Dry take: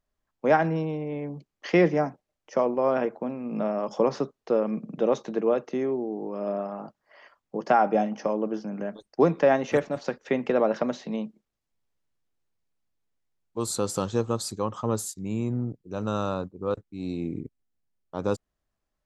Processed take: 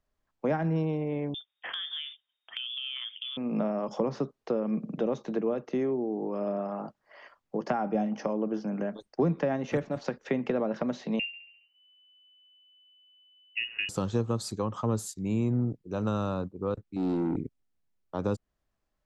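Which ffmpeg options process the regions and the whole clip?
ffmpeg -i in.wav -filter_complex "[0:a]asettb=1/sr,asplit=3[link_01][link_02][link_03];[link_01]atrim=end=1.344[link_04];[link_02]atrim=start=1.34:end=3.37,asetpts=PTS-STARTPTS,afade=type=in:duration=0.004:curve=qsin,afade=type=out:start_time=2.026:duration=0.004:curve=qsin,lowpass=frequency=3100:width_type=q:width=0.5098,lowpass=frequency=3100:width_type=q:width=0.6013,lowpass=frequency=3100:width_type=q:width=0.9,lowpass=frequency=3100:width_type=q:width=2.563,afreqshift=-3700,acompressor=threshold=-34dB:ratio=6:attack=3.2:release=140:knee=1:detection=peak[link_05];[link_03]atrim=start=3.366[link_06];[link_04][link_05]acrossfade=duration=0.004:curve1=hsin:curve2=qsin[link_07];[link_07][link_06]acrossfade=duration=0.004:curve1=qsin:curve2=hsin,asettb=1/sr,asplit=3[link_08][link_09][link_10];[link_08]atrim=end=11.194[link_11];[link_09]atrim=start=11.19:end=13.89,asetpts=PTS-STARTPTS,afade=type=in:duration=0.004:curve=qsin,afade=type=out:start_time=2.696:duration=0.004:curve=qsin,lowshelf=frequency=130:gain=11,aecho=1:1:69|138|207|276|345|414:0.141|0.0833|0.0492|0.029|0.0171|0.0101,atrim=end_sample=119070,lowpass=frequency=2600:width_type=q:width=0.5098,lowpass=frequency=2600:width_type=q:width=0.6013,lowpass=frequency=2600:width_type=q:width=0.9,lowpass=frequency=2600:width_type=q:width=2.563,afreqshift=-3000[link_12];[link_10]atrim=start=13.886[link_13];[link_11][link_12]acrossfade=duration=0.004:curve1=hsin:curve2=qsin[link_14];[link_14][link_13]acrossfade=duration=0.004:curve1=qsin:curve2=hsin,asettb=1/sr,asplit=3[link_15][link_16][link_17];[link_15]atrim=end=16.964[link_18];[link_16]atrim=start=16.96:end=17.37,asetpts=PTS-STARTPTS,afade=type=in:duration=0.004:curve=qsin,afade=type=out:start_time=0.406:duration=0.004:curve=qsin,equalizer=frequency=2100:width=0.68:gain=-10,asplit=2[link_19][link_20];[link_20]highpass=frequency=720:poles=1,volume=24dB,asoftclip=type=tanh:threshold=-21dB[link_21];[link_19][link_21]amix=inputs=2:normalize=0,lowpass=frequency=1200:poles=1,volume=-6dB[link_22];[link_17]atrim=start=17.366[link_23];[link_18][link_22]acrossfade=duration=0.004:curve1=hsin:curve2=qsin[link_24];[link_24][link_23]acrossfade=duration=0.004:curve1=qsin:curve2=hsin,acrossover=split=250[link_25][link_26];[link_26]acompressor=threshold=-31dB:ratio=4[link_27];[link_25][link_27]amix=inputs=2:normalize=0,highshelf=frequency=7500:gain=-7.5,volume=1.5dB" out.wav

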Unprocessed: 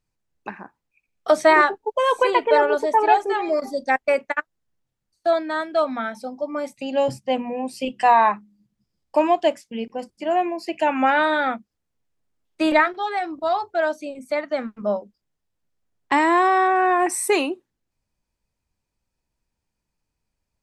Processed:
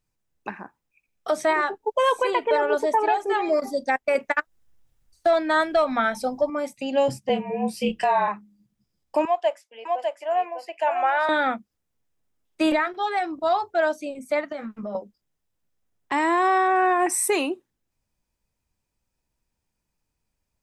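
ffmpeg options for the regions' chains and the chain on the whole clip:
ffmpeg -i in.wav -filter_complex "[0:a]asettb=1/sr,asplit=3[link_01][link_02][link_03];[link_01]atrim=end=4.154[link_04];[link_02]atrim=start=4.15:end=6.5,asetpts=PTS-STARTPTS,afade=type=in:duration=0.004:curve=qsin,afade=type=out:start_time=2.346:duration=0.004:curve=qsin,asubboost=boost=11:cutoff=82,acontrast=86[link_05];[link_03]atrim=start=6.496[link_06];[link_04][link_05]acrossfade=duration=0.004:curve1=hsin:curve2=qsin[link_07];[link_07][link_06]acrossfade=duration=0.004:curve1=qsin:curve2=hsin,asettb=1/sr,asplit=3[link_08][link_09][link_10];[link_08]atrim=end=7.294[link_11];[link_09]atrim=start=7.29:end=8.28,asetpts=PTS-STARTPTS,afade=type=in:duration=0.004:curve=qsin,afade=type=out:start_time=0.986:duration=0.004:curve=qsin,equalizer=frequency=7500:width=2.5:gain=-4.5,afreqshift=-37,asplit=2[link_12][link_13];[link_13]adelay=27,volume=-6dB[link_14];[link_12][link_14]amix=inputs=2:normalize=0,atrim=end_sample=43659[link_15];[link_10]atrim=start=8.276[link_16];[link_11][link_15]acrossfade=duration=0.004:curve1=hsin:curve2=qsin[link_17];[link_17][link_16]acrossfade=duration=0.004:curve1=qsin:curve2=hsin,asettb=1/sr,asplit=3[link_18][link_19][link_20];[link_18]atrim=end=9.254[link_21];[link_19]atrim=start=9.25:end=11.29,asetpts=PTS-STARTPTS,afade=type=in:duration=0.004:curve=qsin,afade=type=out:start_time=2.036:duration=0.004:curve=qsin,highpass=frequency=590:width=0.5412,highpass=frequency=590:width=1.3066,highshelf=frequency=2000:gain=-11,aecho=1:1:602:0.631,atrim=end_sample=89964[link_22];[link_20]atrim=start=11.286[link_23];[link_21][link_22]acrossfade=duration=0.004:curve1=hsin:curve2=qsin[link_24];[link_24][link_23]acrossfade=duration=0.004:curve1=qsin:curve2=hsin,asettb=1/sr,asplit=3[link_25][link_26][link_27];[link_25]atrim=end=14.524[link_28];[link_26]atrim=start=14.52:end=14.95,asetpts=PTS-STARTPTS,afade=type=in:duration=0.004:curve=qsin,afade=type=out:start_time=0.426:duration=0.004:curve=qsin,asplit=2[link_29][link_30];[link_30]adelay=14,volume=-5dB[link_31];[link_29][link_31]amix=inputs=2:normalize=0,atrim=end_sample=18963,acompressor=threshold=-30dB:ratio=5:attack=3.2:release=140:knee=1:detection=peak[link_32];[link_27]atrim=start=14.946[link_33];[link_28][link_32]acrossfade=duration=0.004:curve1=hsin:curve2=qsin[link_34];[link_34][link_33]acrossfade=duration=0.004:curve1=qsin:curve2=hsin,highshelf=frequency=9200:gain=5,bandreject=frequency=4400:width=21,alimiter=limit=-12dB:level=0:latency=1:release=215" out.wav

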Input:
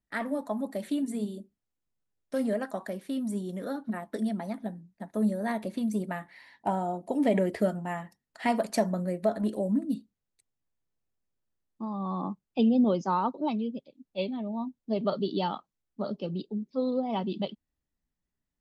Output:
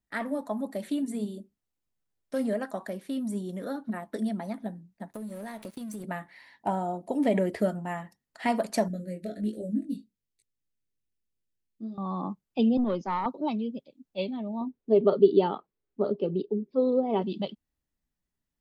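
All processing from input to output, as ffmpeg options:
ffmpeg -i in.wav -filter_complex "[0:a]asettb=1/sr,asplit=3[link_01][link_02][link_03];[link_01]atrim=end=5.134[link_04];[link_02]atrim=start=5.13:end=6.04,asetpts=PTS-STARTPTS,afade=type=in:duration=0.004:curve=qsin,afade=type=out:start_time=0.906:duration=0.004:curve=qsin,highshelf=frequency=5100:gain=11,aeval=exprs='sgn(val(0))*max(abs(val(0))-0.00501,0)':channel_layout=same,acompressor=threshold=-34dB:ratio=12:attack=3.2:release=140:knee=1:detection=peak[link_05];[link_03]atrim=start=6.036[link_06];[link_04][link_05]acrossfade=duration=0.004:curve1=hsin:curve2=qsin[link_07];[link_07][link_06]acrossfade=duration=0.004:curve1=qsin:curve2=hsin,asettb=1/sr,asplit=3[link_08][link_09][link_10];[link_08]atrim=end=8.884[link_11];[link_09]atrim=start=8.88:end=11.98,asetpts=PTS-STARTPTS,afade=type=in:duration=0.004:curve=qsin,afade=type=out:start_time=3.096:duration=0.004:curve=qsin,asuperstop=centerf=970:order=4:qfactor=0.73,flanger=delay=17.5:depth=4.5:speed=1.3[link_12];[link_10]atrim=start=11.976[link_13];[link_11][link_12]acrossfade=duration=0.004:curve1=hsin:curve2=qsin[link_14];[link_14][link_13]acrossfade=duration=0.004:curve1=qsin:curve2=hsin,asettb=1/sr,asplit=3[link_15][link_16][link_17];[link_15]atrim=end=12.774[link_18];[link_16]atrim=start=12.77:end=13.26,asetpts=PTS-STARTPTS,afade=type=in:duration=0.004:curve=qsin,afade=type=out:start_time=0.486:duration=0.004:curve=qsin,highpass=170,lowpass=4300,aeval=exprs='(tanh(10*val(0)+0.35)-tanh(0.35))/10':channel_layout=same[link_19];[link_17]atrim=start=13.256[link_20];[link_18][link_19]acrossfade=duration=0.004:curve1=hsin:curve2=qsin[link_21];[link_21][link_20]acrossfade=duration=0.004:curve1=qsin:curve2=hsin,asettb=1/sr,asplit=3[link_22][link_23][link_24];[link_22]atrim=end=14.614[link_25];[link_23]atrim=start=14.61:end=17.22,asetpts=PTS-STARTPTS,afade=type=in:duration=0.004:curve=qsin,afade=type=out:start_time=2.606:duration=0.004:curve=qsin,lowpass=2900,equalizer=frequency=410:width=2.9:gain=14.5[link_26];[link_24]atrim=start=17.216[link_27];[link_25][link_26]acrossfade=duration=0.004:curve1=hsin:curve2=qsin[link_28];[link_28][link_27]acrossfade=duration=0.004:curve1=qsin:curve2=hsin" out.wav

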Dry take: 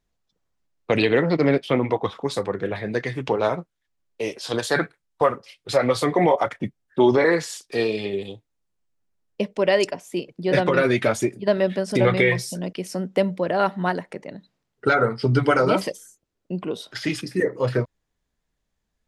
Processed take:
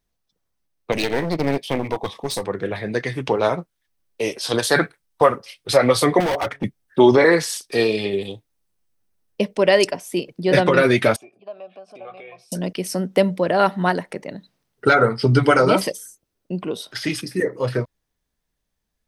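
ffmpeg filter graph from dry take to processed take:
ffmpeg -i in.wav -filter_complex "[0:a]asettb=1/sr,asplit=3[link_01][link_02][link_03];[link_01]atrim=end=0.924[link_04];[link_02]atrim=start=0.92:end=2.44,asetpts=PTS-STARTPTS,afade=type=in:duration=0.004:curve=qsin,afade=type=out:start_time=1.516:duration=0.004:curve=qsin,asuperstop=centerf=1400:order=4:qfactor=2.9,bass=frequency=250:gain=0,treble=frequency=4000:gain=5,aeval=exprs='clip(val(0),-1,0.0447)':channel_layout=same[link_05];[link_03]atrim=start=2.436[link_06];[link_04][link_05]acrossfade=duration=0.004:curve1=hsin:curve2=qsin[link_07];[link_07][link_06]acrossfade=duration=0.004:curve1=qsin:curve2=hsin,asettb=1/sr,asplit=3[link_08][link_09][link_10];[link_08]atrim=end=6.204[link_11];[link_09]atrim=start=6.2:end=6.64,asetpts=PTS-STARTPTS,afade=type=in:duration=0.004:curve=qsin,afade=type=out:start_time=0.436:duration=0.004:curve=qsin,highshelf=frequency=5200:gain=-11.5,bandreject=frequency=140:width_type=h:width=4,bandreject=frequency=280:width_type=h:width=4,bandreject=frequency=420:width_type=h:width=4,volume=23.5dB,asoftclip=hard,volume=-23.5dB[link_12];[link_10]atrim=start=6.636[link_13];[link_11][link_12]acrossfade=duration=0.004:curve1=hsin:curve2=qsin[link_14];[link_14][link_13]acrossfade=duration=0.004:curve1=qsin:curve2=hsin,asettb=1/sr,asplit=3[link_15][link_16][link_17];[link_15]atrim=end=11.164[link_18];[link_16]atrim=start=11.16:end=12.52,asetpts=PTS-STARTPTS,afade=type=in:duration=0.004:curve=qsin,afade=type=out:start_time=1.356:duration=0.004:curve=qsin,acompressor=threshold=-32dB:ratio=2:attack=3.2:release=140:knee=1:detection=peak,asplit=3[link_19][link_20][link_21];[link_19]bandpass=frequency=730:width_type=q:width=8,volume=0dB[link_22];[link_20]bandpass=frequency=1090:width_type=q:width=8,volume=-6dB[link_23];[link_21]bandpass=frequency=2440:width_type=q:width=8,volume=-9dB[link_24];[link_22][link_23][link_24]amix=inputs=3:normalize=0[link_25];[link_17]atrim=start=12.516[link_26];[link_18][link_25]acrossfade=duration=0.004:curve1=hsin:curve2=qsin[link_27];[link_27][link_26]acrossfade=duration=0.004:curve1=qsin:curve2=hsin,highshelf=frequency=6600:gain=9,bandreject=frequency=7100:width=7.9,dynaudnorm=framelen=380:gausssize=17:maxgain=11.5dB,volume=-1dB" out.wav

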